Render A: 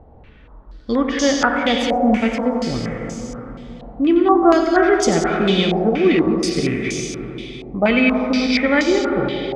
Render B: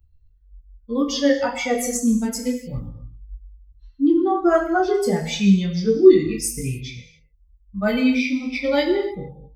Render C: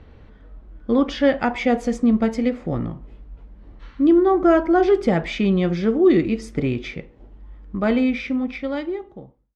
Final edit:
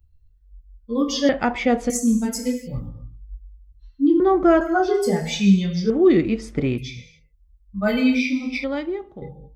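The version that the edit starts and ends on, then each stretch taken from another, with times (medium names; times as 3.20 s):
B
1.29–1.90 s: from C
4.20–4.61 s: from C
5.90–6.78 s: from C
8.64–9.22 s: from C
not used: A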